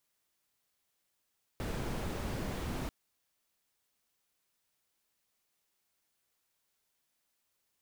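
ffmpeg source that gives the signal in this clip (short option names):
-f lavfi -i "anoisesrc=c=brown:a=0.07:d=1.29:r=44100:seed=1"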